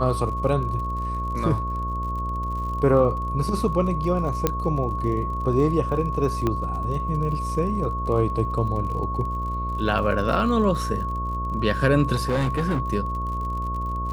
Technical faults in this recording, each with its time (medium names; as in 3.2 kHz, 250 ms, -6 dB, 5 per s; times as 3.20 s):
buzz 60 Hz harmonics 11 -29 dBFS
crackle 48 per s -33 dBFS
whine 1.1 kHz -28 dBFS
4.47 s: pop -6 dBFS
6.47 s: pop -12 dBFS
12.14–12.80 s: clipped -18.5 dBFS